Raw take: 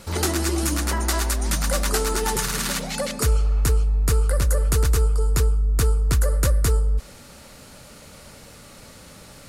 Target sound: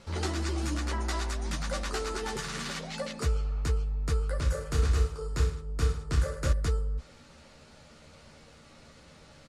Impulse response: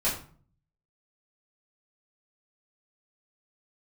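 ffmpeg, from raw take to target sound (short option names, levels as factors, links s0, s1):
-filter_complex "[0:a]lowpass=5400,asplit=2[s0][s1];[s1]adelay=13,volume=0.531[s2];[s0][s2]amix=inputs=2:normalize=0,asettb=1/sr,asplit=3[s3][s4][s5];[s3]atrim=end=4.374[s6];[s4]atrim=start=4.37:end=6.53,asetpts=PTS-STARTPTS,afade=t=in:d=0.004:c=qsin,afade=t=out:st=2.156:d=0.004:c=qsin,aecho=1:1:30|64.5|104.2|149.8|202.3:0.631|0.398|0.251|0.158|0.1,atrim=end_sample=95256[s7];[s5]atrim=start=6.526[s8];[s6][s7]acrossfade=d=0.004:c1=hsin:c2=qsin[s9];[s9][s8]acrossfade=d=0.004:c1=qsin:c2=hsin,volume=0.355" -ar 44100 -c:a libmp3lame -b:a 56k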